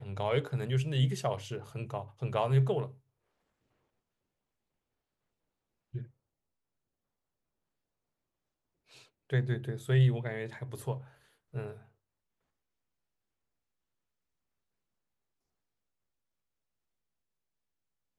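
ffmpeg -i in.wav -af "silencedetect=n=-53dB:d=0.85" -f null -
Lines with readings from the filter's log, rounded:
silence_start: 2.97
silence_end: 5.94 | silence_duration: 2.97
silence_start: 6.07
silence_end: 8.91 | silence_duration: 2.84
silence_start: 11.85
silence_end: 18.18 | silence_duration: 6.33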